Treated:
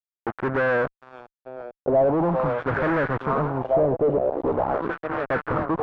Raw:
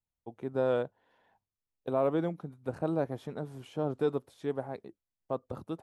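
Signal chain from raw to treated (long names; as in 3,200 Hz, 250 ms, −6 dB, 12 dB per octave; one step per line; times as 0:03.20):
echo through a band-pass that steps 442 ms, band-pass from 3,100 Hz, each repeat −0.7 octaves, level −2.5 dB
0:04.16–0:04.82: ring modulation 32 Hz
fuzz pedal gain 48 dB, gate −48 dBFS
auto-filter low-pass sine 0.43 Hz 610–1,600 Hz
level −8.5 dB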